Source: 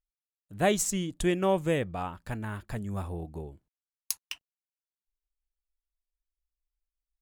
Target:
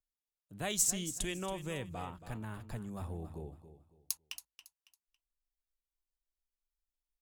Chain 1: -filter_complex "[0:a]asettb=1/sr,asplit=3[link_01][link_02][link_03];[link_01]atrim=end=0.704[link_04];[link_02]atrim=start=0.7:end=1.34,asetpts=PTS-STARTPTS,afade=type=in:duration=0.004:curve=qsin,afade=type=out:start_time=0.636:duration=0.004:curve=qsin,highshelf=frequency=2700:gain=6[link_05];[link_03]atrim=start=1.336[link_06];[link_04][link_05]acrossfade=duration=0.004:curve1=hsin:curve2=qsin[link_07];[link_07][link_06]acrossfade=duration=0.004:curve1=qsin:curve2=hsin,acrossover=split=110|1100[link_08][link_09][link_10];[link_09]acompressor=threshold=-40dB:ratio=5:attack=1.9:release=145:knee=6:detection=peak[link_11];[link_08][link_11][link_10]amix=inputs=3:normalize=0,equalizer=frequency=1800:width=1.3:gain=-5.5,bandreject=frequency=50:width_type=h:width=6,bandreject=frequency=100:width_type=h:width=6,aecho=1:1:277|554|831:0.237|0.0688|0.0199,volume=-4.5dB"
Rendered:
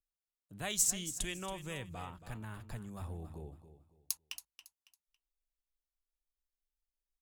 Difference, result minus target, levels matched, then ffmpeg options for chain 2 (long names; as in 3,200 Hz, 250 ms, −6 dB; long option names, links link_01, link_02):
downward compressor: peak gain reduction +5.5 dB
-filter_complex "[0:a]asettb=1/sr,asplit=3[link_01][link_02][link_03];[link_01]atrim=end=0.704[link_04];[link_02]atrim=start=0.7:end=1.34,asetpts=PTS-STARTPTS,afade=type=in:duration=0.004:curve=qsin,afade=type=out:start_time=0.636:duration=0.004:curve=qsin,highshelf=frequency=2700:gain=6[link_05];[link_03]atrim=start=1.336[link_06];[link_04][link_05]acrossfade=duration=0.004:curve1=hsin:curve2=qsin[link_07];[link_07][link_06]acrossfade=duration=0.004:curve1=qsin:curve2=hsin,acrossover=split=110|1100[link_08][link_09][link_10];[link_09]acompressor=threshold=-33dB:ratio=5:attack=1.9:release=145:knee=6:detection=peak[link_11];[link_08][link_11][link_10]amix=inputs=3:normalize=0,equalizer=frequency=1800:width=1.3:gain=-5.5,bandreject=frequency=50:width_type=h:width=6,bandreject=frequency=100:width_type=h:width=6,aecho=1:1:277|554|831:0.237|0.0688|0.0199,volume=-4.5dB"